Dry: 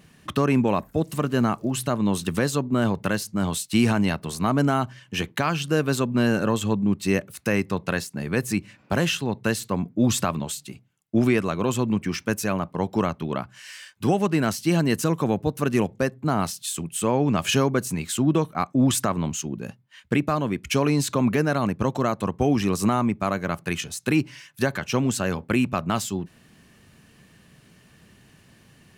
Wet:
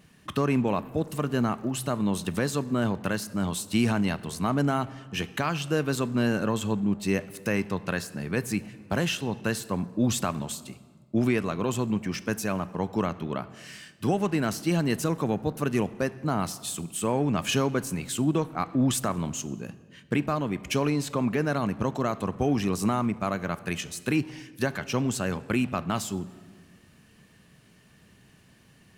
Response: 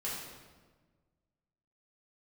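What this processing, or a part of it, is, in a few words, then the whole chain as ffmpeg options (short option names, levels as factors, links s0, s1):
saturated reverb return: -filter_complex "[0:a]asettb=1/sr,asplit=3[s0][s1][s2];[s0]atrim=end=20.904[s3];[s1]atrim=start=20.9:end=21.42,asetpts=PTS-STARTPTS,afade=t=in:d=0.004:c=qsin,afade=t=out:st=0.516:d=0.004:c=qsin,bass=f=250:g=-2,treble=f=4000:g=-5[s4];[s2]atrim=start=21.416[s5];[s3][s4]acrossfade=d=0.004:c1=hsin:c2=qsin[s6];[s6][s5]acrossfade=d=0.004:c1=qsin:c2=hsin,asplit=2[s7][s8];[1:a]atrim=start_sample=2205[s9];[s8][s9]afir=irnorm=-1:irlink=0,asoftclip=type=tanh:threshold=0.1,volume=0.2[s10];[s7][s10]amix=inputs=2:normalize=0,volume=0.596"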